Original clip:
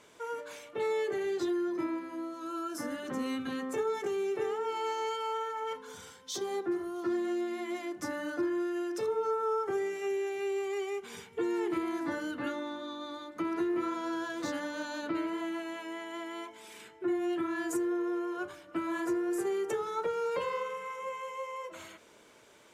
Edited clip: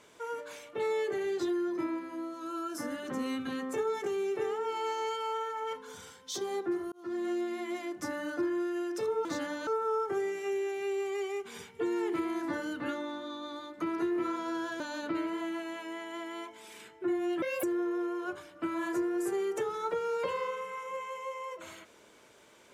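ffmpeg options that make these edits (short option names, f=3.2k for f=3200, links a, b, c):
-filter_complex "[0:a]asplit=7[a][b][c][d][e][f][g];[a]atrim=end=6.92,asetpts=PTS-STARTPTS,afade=t=out:st=6.916:d=0.004:c=hsin[h];[b]atrim=start=6.92:end=9.252,asetpts=PTS-STARTPTS,afade=t=in:d=0.35[i];[c]atrim=start=14.378:end=14.802[j];[d]atrim=start=9.248:end=14.382[k];[e]atrim=start=14.798:end=17.424[l];[f]atrim=start=17.42:end=17.76,asetpts=PTS-STARTPTS,asetrate=70119,aresample=44100,atrim=end_sample=9430,asetpts=PTS-STARTPTS[m];[g]atrim=start=17.756[n];[h][i]concat=n=2:v=0:a=1[o];[o][j]acrossfade=d=0.004:c1=hsin:c2=hsin[p];[p][k]acrossfade=d=0.004:c1=hsin:c2=hsin[q];[q][l]acrossfade=d=0.004:c1=hsin:c2=hsin[r];[r][m]acrossfade=d=0.004:c1=hsin:c2=hsin[s];[s][n]acrossfade=d=0.004:c1=hsin:c2=hsin"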